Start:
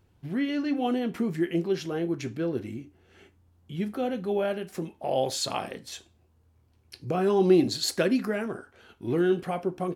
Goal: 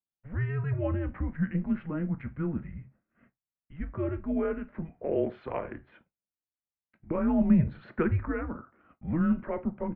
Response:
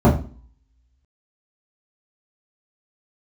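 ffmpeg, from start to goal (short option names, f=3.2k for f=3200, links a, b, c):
-af "highpass=f=220:t=q:w=0.5412,highpass=f=220:t=q:w=1.307,lowpass=f=2.2k:t=q:w=0.5176,lowpass=f=2.2k:t=q:w=0.7071,lowpass=f=2.2k:t=q:w=1.932,afreqshift=-160,agate=range=-33dB:threshold=-50dB:ratio=3:detection=peak,volume=-1.5dB"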